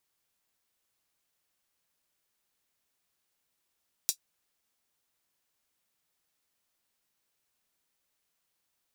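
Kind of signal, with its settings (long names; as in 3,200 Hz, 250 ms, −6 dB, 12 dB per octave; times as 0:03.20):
closed synth hi-hat, high-pass 5,000 Hz, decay 0.09 s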